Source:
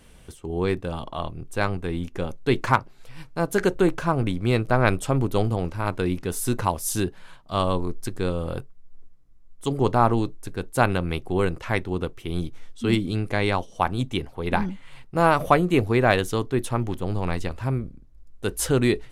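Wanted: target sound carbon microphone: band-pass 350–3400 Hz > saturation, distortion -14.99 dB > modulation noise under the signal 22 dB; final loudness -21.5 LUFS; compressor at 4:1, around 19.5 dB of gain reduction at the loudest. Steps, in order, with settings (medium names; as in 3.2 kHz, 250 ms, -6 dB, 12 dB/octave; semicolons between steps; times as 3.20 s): compression 4:1, threshold -37 dBFS; band-pass 350–3400 Hz; saturation -29.5 dBFS; modulation noise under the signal 22 dB; trim +23 dB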